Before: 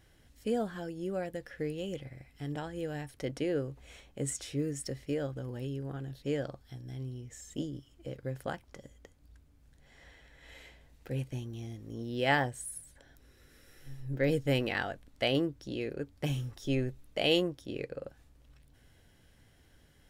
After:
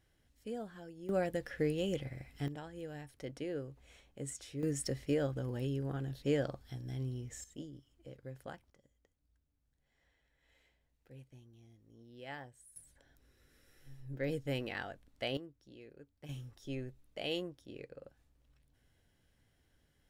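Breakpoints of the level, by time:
−10.5 dB
from 0:01.09 +2.5 dB
from 0:02.48 −8 dB
from 0:04.63 +1 dB
from 0:07.44 −10 dB
from 0:08.70 −19 dB
from 0:12.76 −8 dB
from 0:15.37 −18.5 dB
from 0:16.29 −10.5 dB

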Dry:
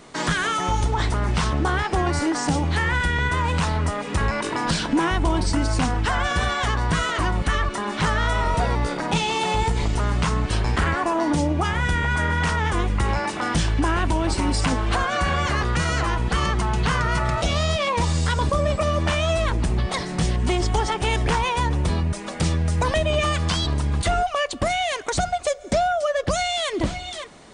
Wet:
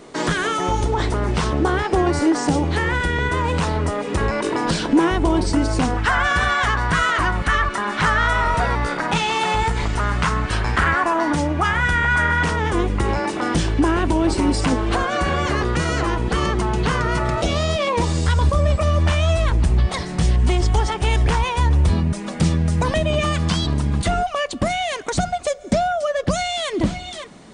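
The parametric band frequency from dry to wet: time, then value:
parametric band +8 dB 1.3 octaves
400 Hz
from 0:05.97 1,500 Hz
from 0:12.43 360 Hz
from 0:18.27 72 Hz
from 0:21.93 200 Hz

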